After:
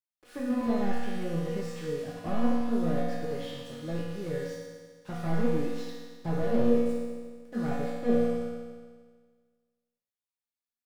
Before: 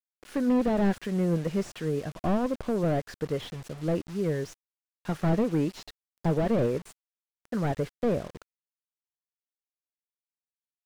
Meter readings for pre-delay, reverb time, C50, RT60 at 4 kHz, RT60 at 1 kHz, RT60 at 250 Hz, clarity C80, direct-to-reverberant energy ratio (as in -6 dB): 4 ms, 1.6 s, -1.5 dB, 1.6 s, 1.6 s, 1.6 s, 1.0 dB, -9.0 dB